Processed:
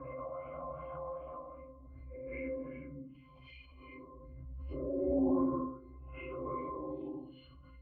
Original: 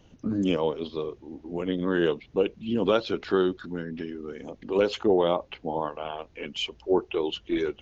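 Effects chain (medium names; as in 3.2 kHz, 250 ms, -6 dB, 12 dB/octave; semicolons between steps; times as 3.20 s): gate -43 dBFS, range -27 dB; Paulstretch 5.3×, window 0.10 s, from 5.94 s; pitch-class resonator C, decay 0.33 s; LFO low-pass sine 2.6 Hz 890–2200 Hz; swell ahead of each attack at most 24 dB/s; trim +6.5 dB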